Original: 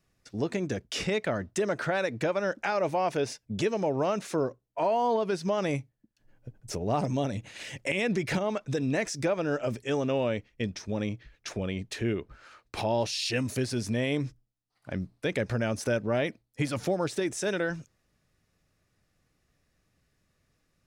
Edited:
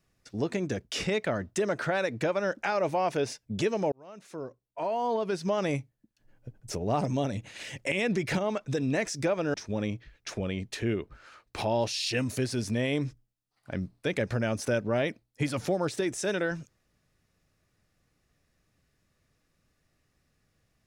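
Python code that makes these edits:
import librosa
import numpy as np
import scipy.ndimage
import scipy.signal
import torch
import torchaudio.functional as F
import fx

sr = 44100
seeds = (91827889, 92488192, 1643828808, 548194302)

y = fx.edit(x, sr, fx.fade_in_span(start_s=3.92, length_s=1.6),
    fx.cut(start_s=9.54, length_s=1.19), tone=tone)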